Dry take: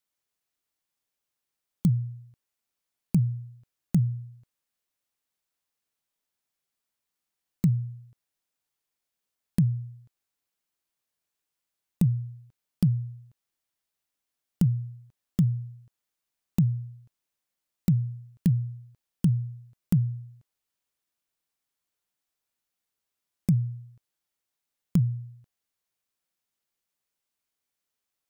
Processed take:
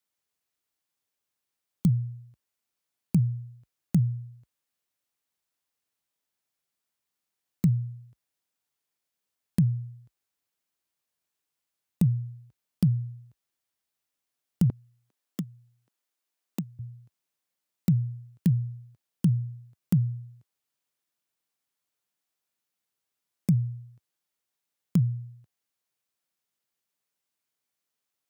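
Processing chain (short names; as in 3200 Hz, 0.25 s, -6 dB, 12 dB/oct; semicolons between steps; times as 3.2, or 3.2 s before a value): HPF 51 Hz 24 dB/oct, from 14.7 s 230 Hz, from 16.79 s 89 Hz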